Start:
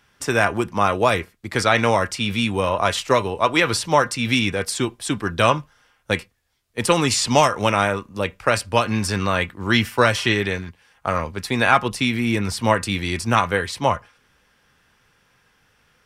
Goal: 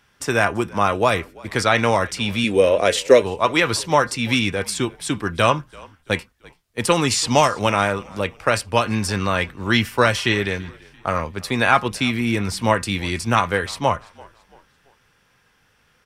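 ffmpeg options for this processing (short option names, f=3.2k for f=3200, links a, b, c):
-filter_complex "[0:a]asettb=1/sr,asplit=3[a][b][c];[a]atrim=end=2.444[d];[b]atrim=start=2.44:end=3.23,asetpts=PTS-STARTPTS,afade=t=in:d=0.004:c=qsin,afade=t=out:st=0.786:d=0.004:c=qsin,equalizer=f=125:t=o:w=1:g=-9,equalizer=f=250:t=o:w=1:g=3,equalizer=f=500:t=o:w=1:g=12,equalizer=f=1k:t=o:w=1:g=-12,equalizer=f=2k:t=o:w=1:g=5,equalizer=f=8k:t=o:w=1:g=4[e];[c]atrim=start=3.226[f];[d][e]acrossfade=d=0.004:c1=hsin:c2=qsin[g];[g][f]acrossfade=d=0.004:c1=qsin:c2=hsin,asplit=2[h][i];[i]asplit=3[j][k][l];[j]adelay=337,afreqshift=-46,volume=-24dB[m];[k]adelay=674,afreqshift=-92,volume=-32dB[n];[l]adelay=1011,afreqshift=-138,volume=-39.9dB[o];[m][n][o]amix=inputs=3:normalize=0[p];[h][p]amix=inputs=2:normalize=0"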